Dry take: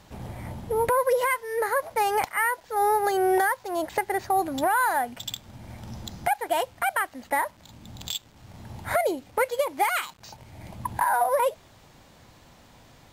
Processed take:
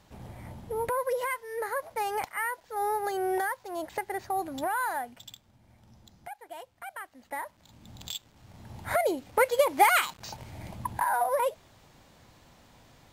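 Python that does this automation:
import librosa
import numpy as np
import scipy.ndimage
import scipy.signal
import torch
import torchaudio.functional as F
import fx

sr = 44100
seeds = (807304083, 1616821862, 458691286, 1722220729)

y = fx.gain(x, sr, db=fx.line((4.93, -7.0), (5.58, -18.0), (6.68, -18.0), (7.9, -5.5), (8.58, -5.5), (9.76, 3.5), (10.42, 3.5), (10.98, -4.0)))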